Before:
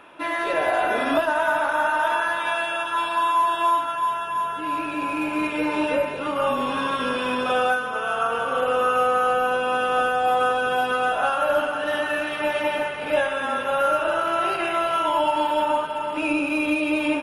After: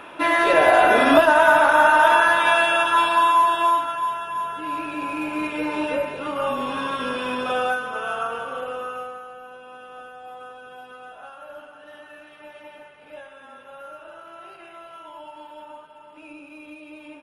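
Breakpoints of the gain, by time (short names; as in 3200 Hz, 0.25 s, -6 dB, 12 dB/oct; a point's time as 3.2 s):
2.86 s +7 dB
4.18 s -2 dB
8.1 s -2 dB
8.99 s -12 dB
9.28 s -19.5 dB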